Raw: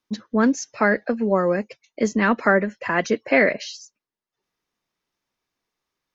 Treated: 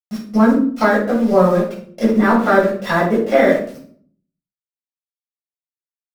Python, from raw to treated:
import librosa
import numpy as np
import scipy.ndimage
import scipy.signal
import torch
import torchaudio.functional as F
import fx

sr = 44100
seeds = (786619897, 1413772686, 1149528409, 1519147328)

p1 = np.r_[np.sort(x[:len(x) // 8 * 8].reshape(-1, 8), axis=1).ravel(), x[len(x) // 8 * 8:]]
p2 = fx.dynamic_eq(p1, sr, hz=1900.0, q=0.89, threshold_db=-35.0, ratio=4.0, max_db=6)
p3 = fx.level_steps(p2, sr, step_db=20)
p4 = p2 + (p3 * 10.0 ** (0.5 / 20.0))
p5 = fx.env_lowpass_down(p4, sr, base_hz=1200.0, full_db=-13.5)
p6 = np.where(np.abs(p5) >= 10.0 ** (-30.5 / 20.0), p5, 0.0)
p7 = p6 + fx.echo_single(p6, sr, ms=113, db=-23.5, dry=0)
p8 = fx.room_shoebox(p7, sr, seeds[0], volume_m3=550.0, walls='furnished', distance_m=6.9)
y = p8 * 10.0 ** (-8.5 / 20.0)